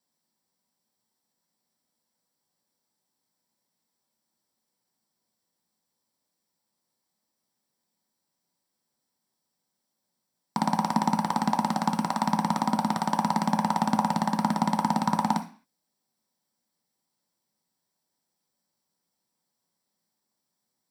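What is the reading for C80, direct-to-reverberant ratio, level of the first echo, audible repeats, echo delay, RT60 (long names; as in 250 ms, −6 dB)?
17.5 dB, 3.0 dB, no echo audible, no echo audible, no echo audible, 0.40 s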